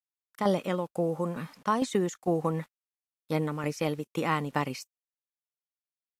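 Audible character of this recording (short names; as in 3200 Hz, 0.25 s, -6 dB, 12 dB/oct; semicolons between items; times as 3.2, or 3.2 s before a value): tremolo saw down 2.2 Hz, depth 60%; a quantiser's noise floor 10-bit, dither none; Vorbis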